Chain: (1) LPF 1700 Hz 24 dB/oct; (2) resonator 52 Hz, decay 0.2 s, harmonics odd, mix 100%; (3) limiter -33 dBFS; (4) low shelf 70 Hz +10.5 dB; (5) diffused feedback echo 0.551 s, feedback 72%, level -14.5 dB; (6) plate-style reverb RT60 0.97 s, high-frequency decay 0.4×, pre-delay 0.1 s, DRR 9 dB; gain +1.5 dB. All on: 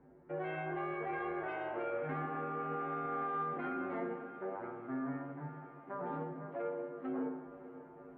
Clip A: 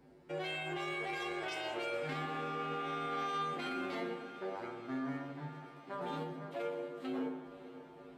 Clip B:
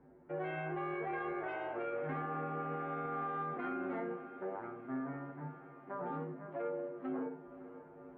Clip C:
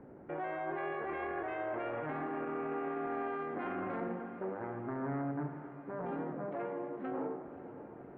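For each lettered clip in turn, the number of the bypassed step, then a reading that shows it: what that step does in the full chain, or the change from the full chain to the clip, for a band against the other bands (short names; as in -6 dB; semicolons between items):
1, 2 kHz band +3.5 dB; 6, echo-to-direct -7.0 dB to -11.5 dB; 2, 1 kHz band -1.5 dB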